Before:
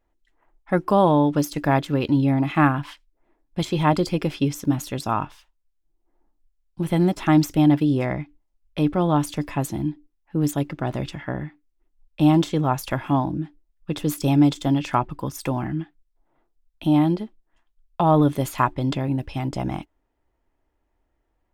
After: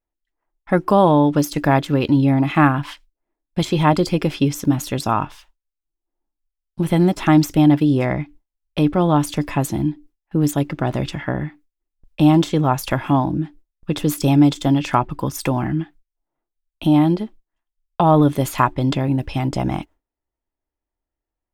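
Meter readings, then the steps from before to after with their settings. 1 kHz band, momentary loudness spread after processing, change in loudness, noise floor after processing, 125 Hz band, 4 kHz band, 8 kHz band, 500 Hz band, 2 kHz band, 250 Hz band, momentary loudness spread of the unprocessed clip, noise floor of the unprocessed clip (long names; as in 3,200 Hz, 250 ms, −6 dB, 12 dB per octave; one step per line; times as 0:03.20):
+4.0 dB, 12 LU, +4.0 dB, −85 dBFS, +4.0 dB, +4.5 dB, +5.0 dB, +4.0 dB, +4.0 dB, +4.0 dB, 13 LU, −72 dBFS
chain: noise gate with hold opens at −48 dBFS
in parallel at −2 dB: downward compressor, threshold −27 dBFS, peak gain reduction 14.5 dB
on the sum: level +2 dB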